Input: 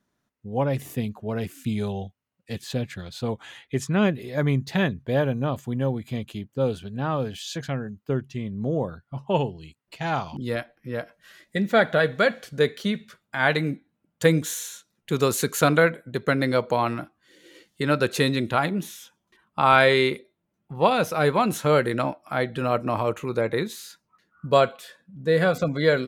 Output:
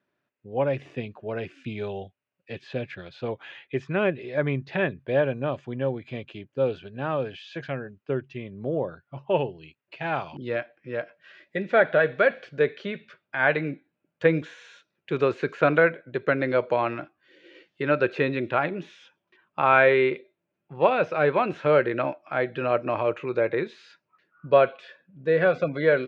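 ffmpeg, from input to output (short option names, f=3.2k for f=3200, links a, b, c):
-filter_complex "[0:a]acrossover=split=2500[a][b];[b]acompressor=threshold=-40dB:ratio=4:attack=1:release=60[c];[a][c]amix=inputs=2:normalize=0,highpass=120,equalizer=f=210:t=q:w=4:g=-7,equalizer=f=370:t=q:w=4:g=5,equalizer=f=580:t=q:w=4:g=6,equalizer=f=1.6k:t=q:w=4:g=5,equalizer=f=2.5k:t=q:w=4:g=8,equalizer=f=4.1k:t=q:w=4:g=-3,lowpass=f=4.5k:w=0.5412,lowpass=f=4.5k:w=1.3066,volume=-3.5dB"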